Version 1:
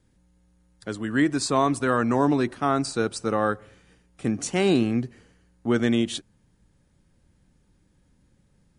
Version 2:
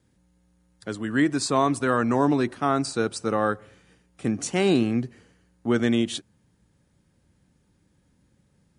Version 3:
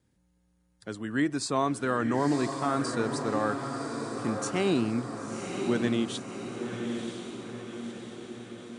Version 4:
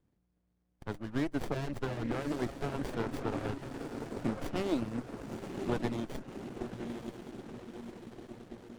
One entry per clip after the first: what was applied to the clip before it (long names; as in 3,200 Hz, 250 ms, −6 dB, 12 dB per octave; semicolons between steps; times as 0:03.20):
high-pass filter 65 Hz
feedback delay with all-pass diffusion 1,004 ms, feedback 59%, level −6 dB; level −5.5 dB
reverb reduction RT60 0.52 s; harmonic and percussive parts rebalanced harmonic −9 dB; windowed peak hold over 33 samples; level +1 dB